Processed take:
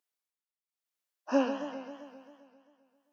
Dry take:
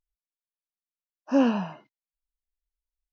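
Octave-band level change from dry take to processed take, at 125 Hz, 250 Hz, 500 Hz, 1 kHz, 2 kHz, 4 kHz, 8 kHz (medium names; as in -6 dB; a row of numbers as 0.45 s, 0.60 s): under -20 dB, -8.5 dB, -2.5 dB, -4.0 dB, -3.5 dB, -4.0 dB, no reading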